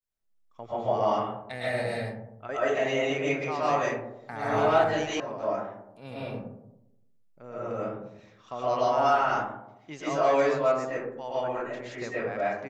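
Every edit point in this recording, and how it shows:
5.2 sound cut off

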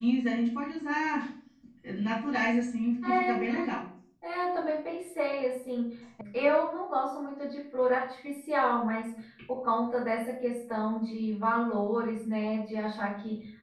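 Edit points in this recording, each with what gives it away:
6.21 sound cut off

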